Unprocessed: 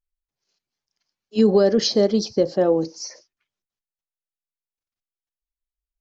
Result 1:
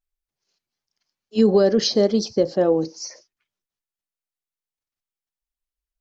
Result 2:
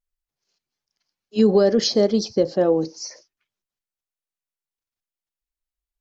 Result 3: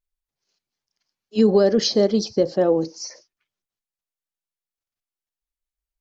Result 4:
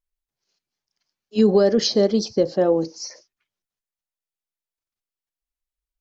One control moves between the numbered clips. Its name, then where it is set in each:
pitch vibrato, speed: 1, 0.64, 15, 1.9 Hertz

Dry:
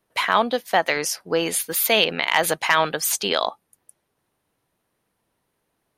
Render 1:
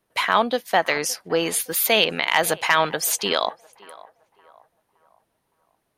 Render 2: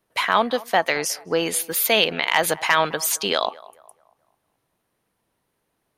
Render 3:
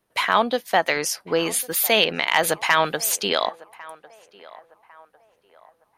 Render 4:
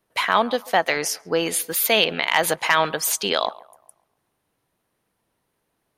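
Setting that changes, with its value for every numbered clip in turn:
feedback echo with a band-pass in the loop, delay time: 565, 214, 1,101, 137 milliseconds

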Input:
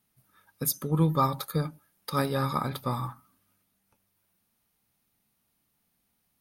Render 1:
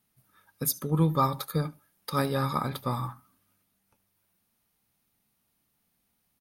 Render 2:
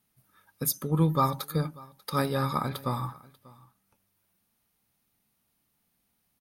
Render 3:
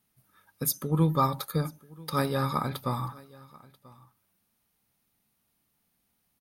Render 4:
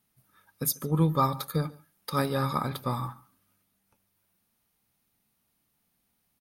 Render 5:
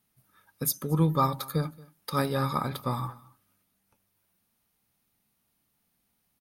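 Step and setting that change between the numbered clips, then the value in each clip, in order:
single-tap delay, delay time: 73, 590, 987, 142, 227 milliseconds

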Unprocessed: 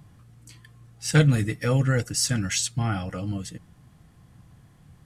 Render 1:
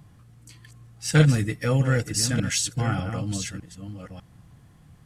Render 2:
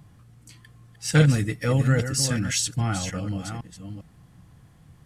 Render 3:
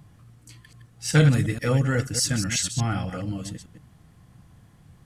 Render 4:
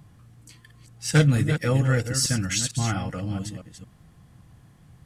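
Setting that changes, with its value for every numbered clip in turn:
delay that plays each chunk backwards, delay time: 600, 401, 122, 226 milliseconds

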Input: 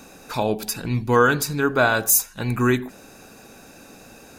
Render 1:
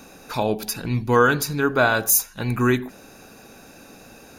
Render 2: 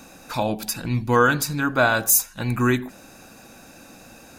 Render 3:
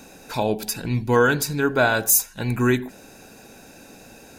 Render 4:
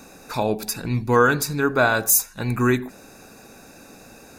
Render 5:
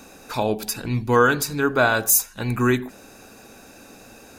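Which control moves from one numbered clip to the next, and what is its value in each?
notch filter, centre frequency: 7,900, 420, 1,200, 3,100, 160 Hertz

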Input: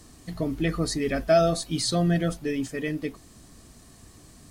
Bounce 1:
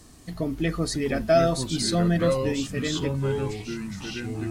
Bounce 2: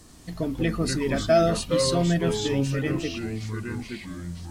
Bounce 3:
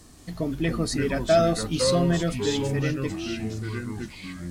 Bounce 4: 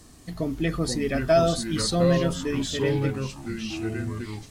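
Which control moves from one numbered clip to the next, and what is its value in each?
delay with pitch and tempo change per echo, delay time: 588, 80, 173, 373 milliseconds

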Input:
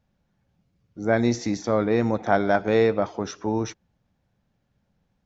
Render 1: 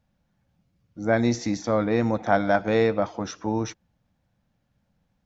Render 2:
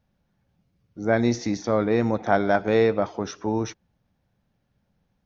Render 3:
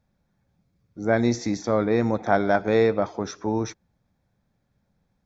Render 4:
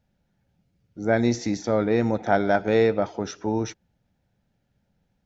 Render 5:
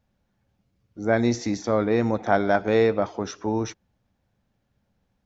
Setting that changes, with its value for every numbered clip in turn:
notch filter, centre frequency: 400, 7,400, 2,900, 1,100, 160 Hertz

